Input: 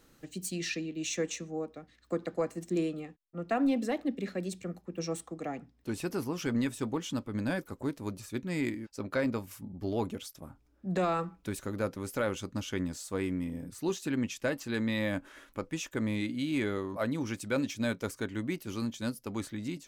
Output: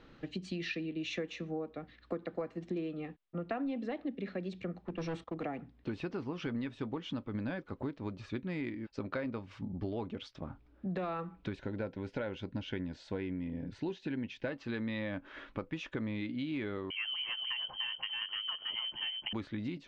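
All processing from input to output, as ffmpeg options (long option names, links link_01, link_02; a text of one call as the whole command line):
ffmpeg -i in.wav -filter_complex "[0:a]asettb=1/sr,asplit=3[link_01][link_02][link_03];[link_01]atrim=end=4.884[link_04];[link_02]atrim=start=4.88:end=5.45,asetpts=PTS-STARTPTS,afade=type=in:duration=0.004:curve=qsin,afade=type=out:start_time=0.566:duration=0.004:curve=qsin,agate=range=-17dB:threshold=-51dB:ratio=16:release=100:detection=peak,asoftclip=type=hard:threshold=-36dB[link_05];[link_03]atrim=start=5.446[link_06];[link_04][link_05]acrossfade=duration=0.004:curve1=hsin:curve2=qsin[link_07];[link_07][link_06]acrossfade=duration=0.004:curve1=qsin:curve2=hsin,asettb=1/sr,asplit=3[link_08][link_09][link_10];[link_08]atrim=end=11.564[link_11];[link_09]atrim=start=11.56:end=14.47,asetpts=PTS-STARTPTS,afade=type=in:duration=0.004:curve=qsin,afade=type=out:start_time=2.906:duration=0.004:curve=qsin,asuperstop=centerf=1200:order=4:qfactor=4.2,highshelf=frequency=8000:gain=-7.5[link_12];[link_10]atrim=start=14.466[link_13];[link_11][link_12]acrossfade=duration=0.004:curve1=hsin:curve2=qsin[link_14];[link_14][link_13]acrossfade=duration=0.004:curve1=qsin:curve2=hsin,asettb=1/sr,asplit=3[link_15][link_16][link_17];[link_15]atrim=end=16.904[link_18];[link_16]atrim=start=16.9:end=19.33,asetpts=PTS-STARTPTS,afade=type=in:duration=0.004:curve=qsin,afade=type=out:start_time=2.426:duration=0.004:curve=qsin,aecho=1:1:297:0.501,atrim=end_sample=107163,acrossover=split=180|860[link_19][link_20][link_21];[link_19]acompressor=threshold=-47dB:ratio=4[link_22];[link_20]acompressor=threshold=-34dB:ratio=4[link_23];[link_21]acompressor=threshold=-43dB:ratio=4[link_24];[link_22][link_23][link_24]amix=inputs=3:normalize=0,lowpass=frequency=2800:width_type=q:width=0.5098,lowpass=frequency=2800:width_type=q:width=0.6013,lowpass=frequency=2800:width_type=q:width=0.9,lowpass=frequency=2800:width_type=q:width=2.563,afreqshift=-3300[link_25];[link_17]atrim=start=19.326[link_26];[link_18][link_25]acrossfade=duration=0.004:curve1=hsin:curve2=qsin[link_27];[link_27][link_26]acrossfade=duration=0.004:curve1=qsin:curve2=hsin,lowpass=frequency=3800:width=0.5412,lowpass=frequency=3800:width=1.3066,acompressor=threshold=-41dB:ratio=5,volume=5.5dB" out.wav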